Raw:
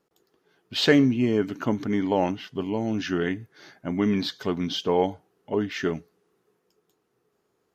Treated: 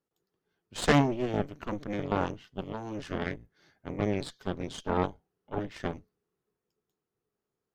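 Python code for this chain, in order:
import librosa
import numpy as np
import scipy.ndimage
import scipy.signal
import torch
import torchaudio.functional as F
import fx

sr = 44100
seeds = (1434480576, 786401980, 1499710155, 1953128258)

y = fx.octave_divider(x, sr, octaves=1, level_db=0.0)
y = fx.cheby_harmonics(y, sr, harmonics=(3, 6), levels_db=(-12, -17), full_scale_db=-5.0)
y = y * librosa.db_to_amplitude(-3.0)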